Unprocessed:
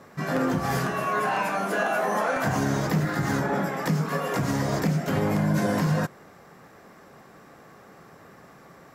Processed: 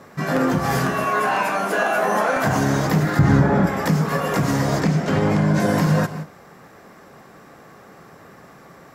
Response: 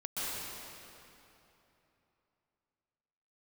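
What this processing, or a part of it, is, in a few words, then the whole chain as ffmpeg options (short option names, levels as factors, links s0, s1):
keyed gated reverb: -filter_complex "[0:a]asettb=1/sr,asplit=3[s0][s1][s2];[s0]atrim=end=3.194[s3];[s1]atrim=start=3.19:end=3.67,asetpts=PTS-STARTPTS,afade=t=in:d=0.004:c=qsin,afade=t=out:st=0.476:d=0.004:c=qsin,aemphasis=mode=reproduction:type=bsi[s4];[s2]atrim=start=3.666[s5];[s3][s4]acrossfade=d=0.004:c1=hsin:c2=qsin[s6];[s6][s5]acrossfade=d=0.004:c1=qsin:c2=hsin,asettb=1/sr,asplit=3[s7][s8][s9];[s7]atrim=end=4.814[s10];[s8]atrim=start=4.81:end=5.6,asetpts=PTS-STARTPTS,afade=t=in:d=0.004:c=qsin,afade=t=out:st=0.786:d=0.004:c=qsin,lowpass=7300[s11];[s9]atrim=start=5.596[s12];[s10][s11]acrossfade=d=0.004:c1=hsin:c2=qsin[s13];[s13][s12]acrossfade=d=0.004:c1=qsin:c2=hsin,asplit=3[s14][s15][s16];[1:a]atrim=start_sample=2205[s17];[s15][s17]afir=irnorm=-1:irlink=0[s18];[s16]apad=whole_len=394498[s19];[s18][s19]sidechaingate=range=0.0224:threshold=0.00631:ratio=16:detection=peak,volume=0.158[s20];[s14][s20]amix=inputs=2:normalize=0,asettb=1/sr,asplit=3[s21][s22][s23];[s21]atrim=end=1.044[s24];[s22]atrim=start=1.04:end=1.98,asetpts=PTS-STARTPTS,afade=t=in:d=0.004:c=qsin,afade=t=out:st=0.936:d=0.004:c=qsin,highpass=f=190:p=1[s25];[s23]atrim=start=1.976[s26];[s24][s25]acrossfade=d=0.004:c1=hsin:c2=qsin[s27];[s27][s26]acrossfade=d=0.004:c1=qsin:c2=hsin,volume=1.68"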